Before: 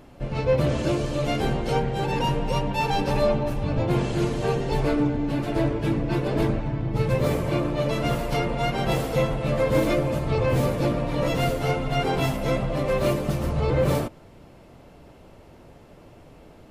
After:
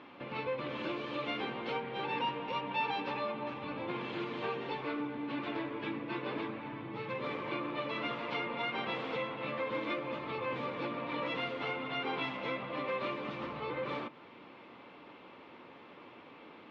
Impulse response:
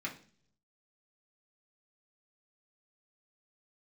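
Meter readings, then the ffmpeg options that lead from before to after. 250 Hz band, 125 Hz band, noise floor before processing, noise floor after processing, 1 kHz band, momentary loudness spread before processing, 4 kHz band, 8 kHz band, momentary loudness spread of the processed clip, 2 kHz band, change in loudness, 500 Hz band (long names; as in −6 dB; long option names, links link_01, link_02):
−14.0 dB, −24.5 dB, −49 dBFS, −54 dBFS, −8.0 dB, 3 LU, −7.5 dB, below −30 dB, 18 LU, −5.5 dB, −12.5 dB, −14.0 dB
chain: -filter_complex "[0:a]acompressor=threshold=-30dB:ratio=6,highpass=310,equalizer=frequency=400:width_type=q:width=4:gain=-4,equalizer=frequency=640:width_type=q:width=4:gain=-10,equalizer=frequency=1100:width_type=q:width=4:gain=6,equalizer=frequency=2300:width_type=q:width=4:gain=4,equalizer=frequency=3500:width_type=q:width=4:gain=4,lowpass=frequency=3600:width=0.5412,lowpass=frequency=3600:width=1.3066,asplit=2[link_01][link_02];[1:a]atrim=start_sample=2205[link_03];[link_02][link_03]afir=irnorm=-1:irlink=0,volume=-13.5dB[link_04];[link_01][link_04]amix=inputs=2:normalize=0"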